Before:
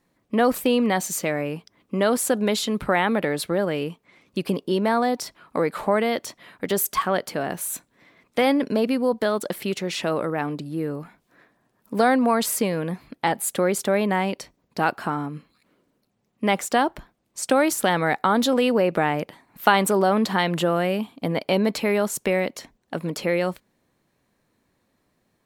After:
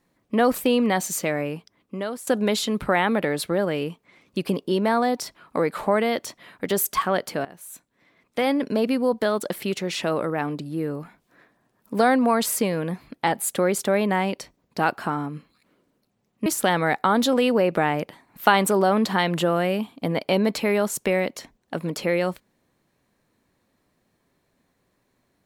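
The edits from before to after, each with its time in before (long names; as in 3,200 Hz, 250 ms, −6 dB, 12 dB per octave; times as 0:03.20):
0:01.43–0:02.27: fade out, to −17 dB
0:07.45–0:08.91: fade in, from −18.5 dB
0:16.46–0:17.66: remove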